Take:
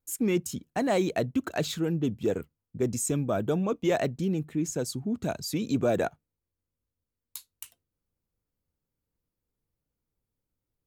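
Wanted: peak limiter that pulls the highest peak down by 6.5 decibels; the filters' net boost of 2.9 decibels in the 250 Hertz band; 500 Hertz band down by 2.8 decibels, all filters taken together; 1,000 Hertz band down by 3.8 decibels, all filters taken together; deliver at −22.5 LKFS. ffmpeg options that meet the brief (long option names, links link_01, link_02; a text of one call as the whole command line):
ffmpeg -i in.wav -af "equalizer=frequency=250:width_type=o:gain=5.5,equalizer=frequency=500:width_type=o:gain=-5,equalizer=frequency=1000:width_type=o:gain=-3.5,volume=7dB,alimiter=limit=-12.5dB:level=0:latency=1" out.wav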